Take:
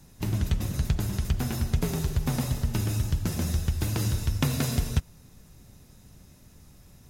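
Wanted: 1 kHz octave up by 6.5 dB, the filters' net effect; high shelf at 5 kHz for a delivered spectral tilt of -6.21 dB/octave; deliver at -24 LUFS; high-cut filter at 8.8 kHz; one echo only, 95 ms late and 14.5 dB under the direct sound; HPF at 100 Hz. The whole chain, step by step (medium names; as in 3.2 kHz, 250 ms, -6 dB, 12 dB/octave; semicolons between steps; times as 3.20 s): high-pass 100 Hz; low-pass 8.8 kHz; peaking EQ 1 kHz +8.5 dB; treble shelf 5 kHz -7 dB; delay 95 ms -14.5 dB; trim +6.5 dB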